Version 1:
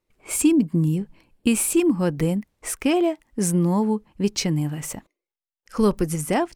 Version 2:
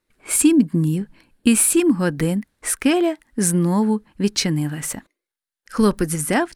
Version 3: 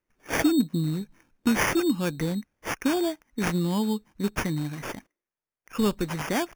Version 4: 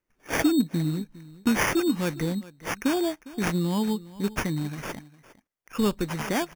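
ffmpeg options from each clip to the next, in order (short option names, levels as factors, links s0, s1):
-af "equalizer=f=250:t=o:w=0.67:g=5,equalizer=f=1600:t=o:w=0.67:g=10,equalizer=f=4000:t=o:w=0.67:g=6,equalizer=f=10000:t=o:w=0.67:g=8"
-af "acrusher=samples=11:mix=1:aa=0.000001,volume=0.422"
-af "aecho=1:1:406:0.112"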